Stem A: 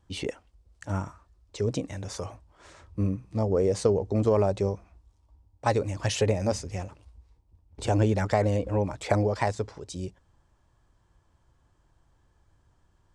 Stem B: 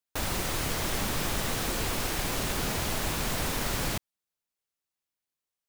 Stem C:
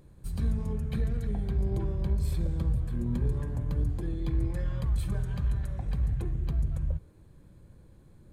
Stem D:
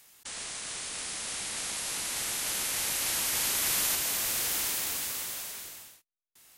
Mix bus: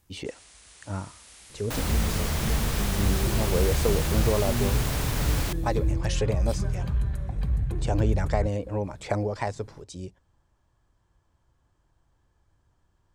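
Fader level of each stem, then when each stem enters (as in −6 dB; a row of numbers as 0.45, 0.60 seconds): −3.0, −1.0, +2.5, −14.5 decibels; 0.00, 1.55, 1.50, 0.00 seconds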